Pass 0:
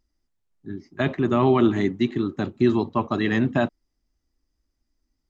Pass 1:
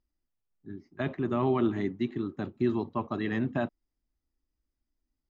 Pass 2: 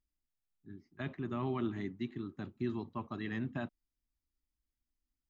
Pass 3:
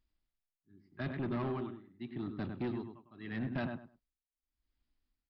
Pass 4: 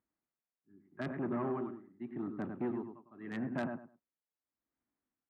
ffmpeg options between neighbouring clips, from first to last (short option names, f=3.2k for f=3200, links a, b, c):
-af "lowpass=f=2.9k:p=1,volume=-8dB"
-af "equalizer=f=540:t=o:w=1.8:g=-7,volume=-5.5dB"
-filter_complex "[0:a]tremolo=f=0.82:d=0.98,asplit=2[a][b];[b]adelay=102,lowpass=f=2.4k:p=1,volume=-8dB,asplit=2[c][d];[d]adelay=102,lowpass=f=2.4k:p=1,volume=0.2,asplit=2[e][f];[f]adelay=102,lowpass=f=2.4k:p=1,volume=0.2[g];[a][c][e][g]amix=inputs=4:normalize=0,aresample=11025,asoftclip=type=tanh:threshold=-37dB,aresample=44100,volume=6.5dB"
-filter_complex "[0:a]acrossover=split=2000[a][b];[b]acrusher=bits=6:mix=0:aa=0.000001[c];[a][c]amix=inputs=2:normalize=0,highpass=190,lowpass=4.3k,volume=2dB"